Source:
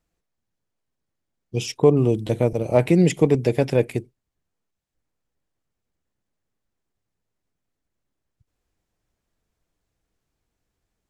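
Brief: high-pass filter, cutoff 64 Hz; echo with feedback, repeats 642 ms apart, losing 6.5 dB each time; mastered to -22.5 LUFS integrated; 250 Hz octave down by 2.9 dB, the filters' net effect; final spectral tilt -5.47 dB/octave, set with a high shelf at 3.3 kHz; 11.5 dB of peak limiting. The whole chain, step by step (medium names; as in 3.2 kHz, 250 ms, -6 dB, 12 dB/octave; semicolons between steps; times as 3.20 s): high-pass 64 Hz; peaking EQ 250 Hz -4.5 dB; treble shelf 3.3 kHz +4 dB; peak limiter -16 dBFS; feedback delay 642 ms, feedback 47%, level -6.5 dB; trim +5.5 dB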